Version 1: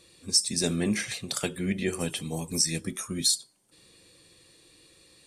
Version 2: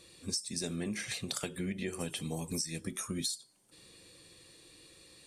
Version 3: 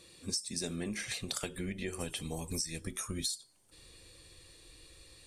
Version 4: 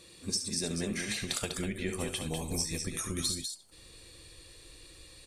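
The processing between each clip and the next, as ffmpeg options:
ffmpeg -i in.wav -af "acompressor=threshold=-33dB:ratio=8" out.wav
ffmpeg -i in.wav -af "asubboost=boost=9.5:cutoff=62" out.wav
ffmpeg -i in.wav -af "aecho=1:1:69.97|198.3:0.316|0.501,volume=2.5dB" out.wav

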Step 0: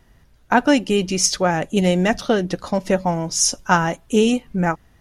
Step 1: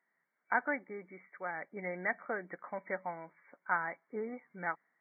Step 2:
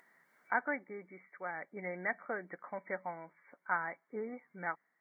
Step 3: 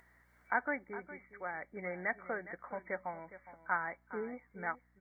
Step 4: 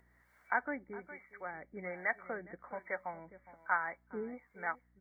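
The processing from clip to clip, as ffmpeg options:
ffmpeg -i in.wav -af "aderivative,dynaudnorm=framelen=110:gausssize=7:maxgain=6.5dB,afftfilt=real='re*between(b*sr/4096,150,2300)':imag='im*between(b*sr/4096,150,2300)':win_size=4096:overlap=0.75,volume=-3.5dB" out.wav
ffmpeg -i in.wav -af "acompressor=mode=upward:threshold=-53dB:ratio=2.5,volume=-1.5dB" out.wav
ffmpeg -i in.wav -af "aeval=exprs='val(0)+0.000316*(sin(2*PI*60*n/s)+sin(2*PI*2*60*n/s)/2+sin(2*PI*3*60*n/s)/3+sin(2*PI*4*60*n/s)/4+sin(2*PI*5*60*n/s)/5)':channel_layout=same,aecho=1:1:412:0.188" out.wav
ffmpeg -i in.wav -filter_complex "[0:a]acrossover=split=480[link_01][link_02];[link_01]aeval=exprs='val(0)*(1-0.7/2+0.7/2*cos(2*PI*1.2*n/s))':channel_layout=same[link_03];[link_02]aeval=exprs='val(0)*(1-0.7/2-0.7/2*cos(2*PI*1.2*n/s))':channel_layout=same[link_04];[link_03][link_04]amix=inputs=2:normalize=0,volume=2dB" out.wav

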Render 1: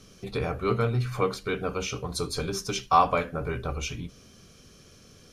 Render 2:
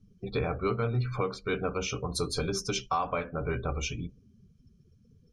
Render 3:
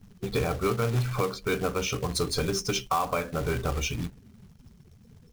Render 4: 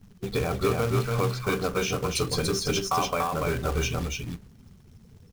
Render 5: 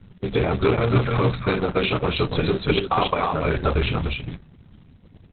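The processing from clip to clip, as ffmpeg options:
ffmpeg -i in.wav -af "afftdn=noise_reduction=29:noise_floor=-43,alimiter=limit=-18.5dB:level=0:latency=1:release=376" out.wav
ffmpeg -i in.wav -filter_complex "[0:a]asplit=2[link_01][link_02];[link_02]acompressor=threshold=-38dB:ratio=5,volume=1.5dB[link_03];[link_01][link_03]amix=inputs=2:normalize=0,acrusher=bits=3:mode=log:mix=0:aa=0.000001" out.wav
ffmpeg -i in.wav -af "aecho=1:1:288:0.708" out.wav
ffmpeg -i in.wav -af "acrusher=bits=11:mix=0:aa=0.000001,volume=7dB" -ar 48000 -c:a libopus -b:a 6k out.opus

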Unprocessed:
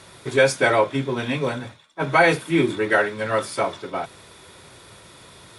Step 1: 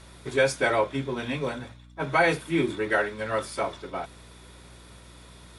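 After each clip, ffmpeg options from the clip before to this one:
ffmpeg -i in.wav -af "bandreject=frequency=60:width_type=h:width=6,bandreject=frequency=120:width_type=h:width=6,aeval=exprs='val(0)+0.00631*(sin(2*PI*60*n/s)+sin(2*PI*2*60*n/s)/2+sin(2*PI*3*60*n/s)/3+sin(2*PI*4*60*n/s)/4+sin(2*PI*5*60*n/s)/5)':channel_layout=same,volume=-5.5dB" out.wav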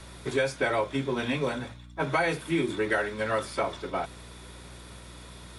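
ffmpeg -i in.wav -filter_complex "[0:a]acrossover=split=130|4300[link_01][link_02][link_03];[link_01]acompressor=threshold=-47dB:ratio=4[link_04];[link_02]acompressor=threshold=-27dB:ratio=4[link_05];[link_03]acompressor=threshold=-48dB:ratio=4[link_06];[link_04][link_05][link_06]amix=inputs=3:normalize=0,volume=3dB" out.wav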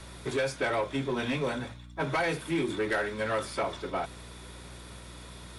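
ffmpeg -i in.wav -af "asoftclip=type=tanh:threshold=-22dB" out.wav

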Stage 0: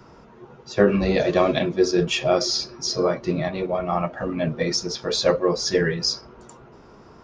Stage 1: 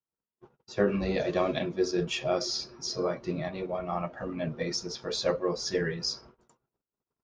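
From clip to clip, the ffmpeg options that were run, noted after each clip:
ffmpeg -i in.wav -af "agate=range=-45dB:threshold=-42dB:ratio=16:detection=peak,volume=-8.5dB" out.wav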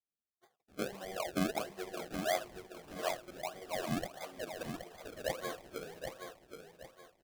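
ffmpeg -i in.wav -filter_complex "[0:a]asplit=3[link_01][link_02][link_03];[link_01]bandpass=frequency=730:width_type=q:width=8,volume=0dB[link_04];[link_02]bandpass=frequency=1090:width_type=q:width=8,volume=-6dB[link_05];[link_03]bandpass=frequency=2440:width_type=q:width=8,volume=-9dB[link_06];[link_04][link_05][link_06]amix=inputs=3:normalize=0,acrusher=samples=32:mix=1:aa=0.000001:lfo=1:lforange=32:lforate=1.6,asplit=2[link_07][link_08];[link_08]aecho=0:1:773|1546|2319|3092:0.447|0.143|0.0457|0.0146[link_09];[link_07][link_09]amix=inputs=2:normalize=0,volume=1.5dB" out.wav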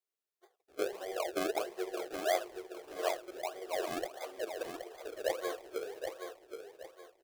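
ffmpeg -i in.wav -af "lowshelf=frequency=280:width_type=q:width=3:gain=-11.5" out.wav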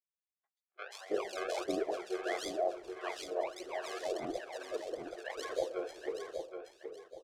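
ffmpeg -i in.wav -filter_complex "[0:a]lowpass=7000,agate=range=-33dB:threshold=-50dB:ratio=3:detection=peak,acrossover=split=820|2800[link_01][link_02][link_03];[link_03]adelay=130[link_04];[link_01]adelay=320[link_05];[link_05][link_02][link_04]amix=inputs=3:normalize=0,volume=1dB" out.wav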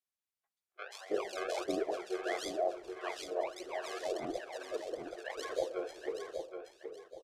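ffmpeg -i in.wav -af "aresample=32000,aresample=44100" out.wav

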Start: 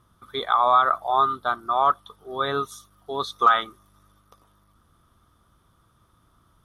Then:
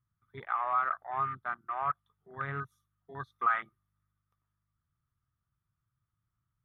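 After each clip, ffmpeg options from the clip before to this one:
ffmpeg -i in.wav -af "afwtdn=0.0316,equalizer=frequency=125:width_type=o:width=1:gain=11,equalizer=frequency=250:width_type=o:width=1:gain=-6,equalizer=frequency=500:width_type=o:width=1:gain=-11,equalizer=frequency=1000:width_type=o:width=1:gain=-4,equalizer=frequency=2000:width_type=o:width=1:gain=7,equalizer=frequency=4000:width_type=o:width=1:gain=-9,equalizer=frequency=8000:width_type=o:width=1:gain=-11,volume=-8dB" out.wav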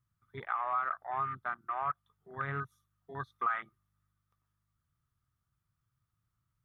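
ffmpeg -i in.wav -af "acompressor=threshold=-34dB:ratio=2,volume=1.5dB" out.wav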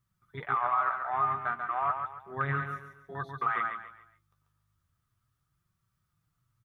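ffmpeg -i in.wav -filter_complex "[0:a]asplit=2[link_01][link_02];[link_02]aecho=0:1:140|280|420|560:0.501|0.175|0.0614|0.0215[link_03];[link_01][link_03]amix=inputs=2:normalize=0,flanger=delay=5.2:depth=7.4:regen=42:speed=0.34:shape=sinusoidal,volume=8dB" out.wav

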